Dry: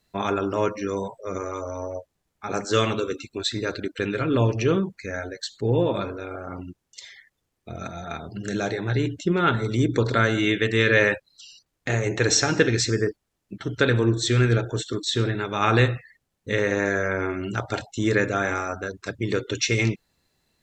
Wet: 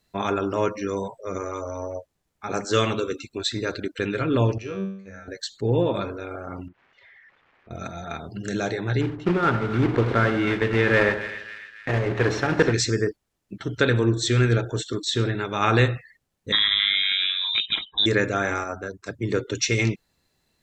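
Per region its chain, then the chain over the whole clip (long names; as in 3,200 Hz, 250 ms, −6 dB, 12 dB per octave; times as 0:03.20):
0:04.58–0:05.28: noise gate −34 dBFS, range −12 dB + tuned comb filter 97 Hz, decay 0.6 s, mix 90%
0:06.68–0:07.71: spike at every zero crossing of −32.5 dBFS + low-pass filter 2,000 Hz 24 dB per octave + downward compressor 3 to 1, threshold −49 dBFS
0:09.01–0:12.74: one scale factor per block 3 bits + low-pass filter 2,100 Hz + echo with a time of its own for lows and highs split 1,500 Hz, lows 86 ms, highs 275 ms, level −10 dB
0:16.52–0:18.06: low-shelf EQ 240 Hz +6 dB + voice inversion scrambler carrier 3,800 Hz
0:18.64–0:19.66: parametric band 3,200 Hz −5 dB 1.4 octaves + multiband upward and downward expander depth 40%
whole clip: no processing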